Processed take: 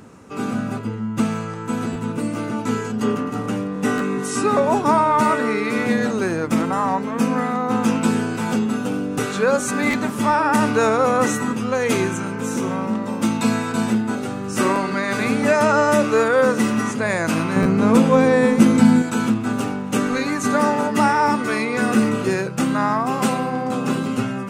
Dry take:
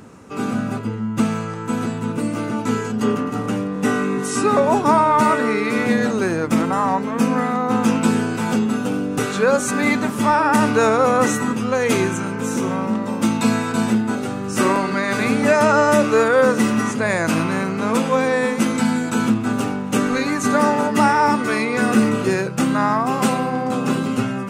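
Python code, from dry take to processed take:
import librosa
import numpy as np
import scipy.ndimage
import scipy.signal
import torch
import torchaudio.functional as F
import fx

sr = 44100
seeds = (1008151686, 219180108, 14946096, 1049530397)

y = fx.low_shelf(x, sr, hz=480.0, db=10.0, at=(17.56, 19.02))
y = fx.buffer_glitch(y, sr, at_s=(1.92, 3.97, 9.9, 17.62), block=512, repeats=2)
y = F.gain(torch.from_numpy(y), -1.5).numpy()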